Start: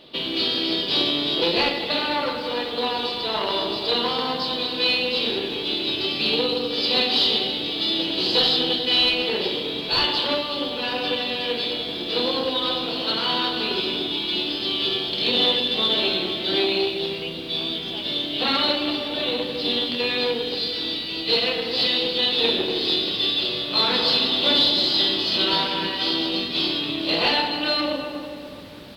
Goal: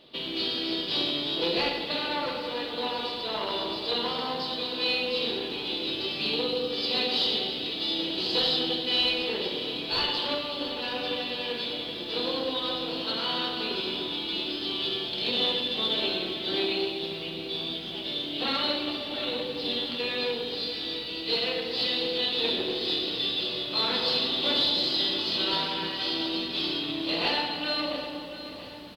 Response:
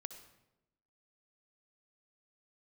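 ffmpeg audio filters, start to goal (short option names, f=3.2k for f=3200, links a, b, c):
-filter_complex "[0:a]aecho=1:1:685|1370|2055|2740|3425:0.211|0.101|0.0487|0.0234|0.0112[a];[1:a]atrim=start_sample=2205,atrim=end_sample=6615[b];[a][b]afir=irnorm=-1:irlink=0,volume=-2.5dB"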